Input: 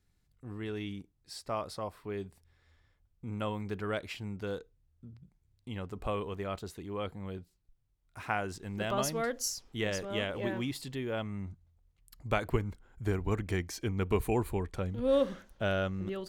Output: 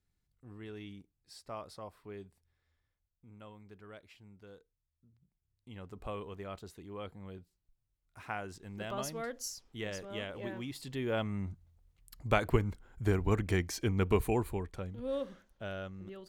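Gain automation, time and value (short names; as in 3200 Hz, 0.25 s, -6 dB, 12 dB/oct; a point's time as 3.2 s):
2.11 s -8 dB
3.29 s -17 dB
5.12 s -17 dB
5.91 s -6.5 dB
10.67 s -6.5 dB
11.09 s +2 dB
14.04 s +2 dB
15.23 s -10 dB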